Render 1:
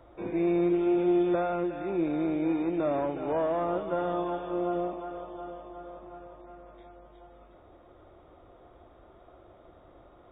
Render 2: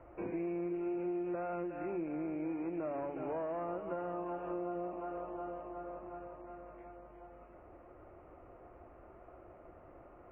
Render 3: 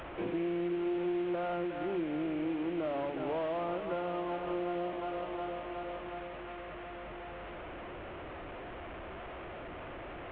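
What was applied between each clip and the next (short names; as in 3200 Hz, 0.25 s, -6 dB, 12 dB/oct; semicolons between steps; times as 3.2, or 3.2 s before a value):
steep low-pass 2800 Hz 96 dB/oct; de-hum 48.07 Hz, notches 6; compressor 4:1, threshold -36 dBFS, peak gain reduction 12.5 dB; gain -1 dB
delta modulation 16 kbps, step -42.5 dBFS; in parallel at -10 dB: soft clip -36 dBFS, distortion -14 dB; on the sum: gain +2 dB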